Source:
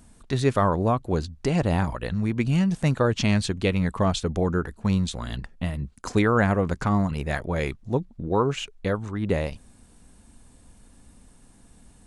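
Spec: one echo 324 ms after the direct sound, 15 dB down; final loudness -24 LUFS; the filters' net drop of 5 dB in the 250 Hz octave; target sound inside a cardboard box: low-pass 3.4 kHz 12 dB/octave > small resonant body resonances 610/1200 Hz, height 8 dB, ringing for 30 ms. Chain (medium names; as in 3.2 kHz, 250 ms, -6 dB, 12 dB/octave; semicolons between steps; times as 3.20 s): low-pass 3.4 kHz 12 dB/octave; peaking EQ 250 Hz -7.5 dB; delay 324 ms -15 dB; small resonant body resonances 610/1200 Hz, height 8 dB, ringing for 30 ms; trim +1.5 dB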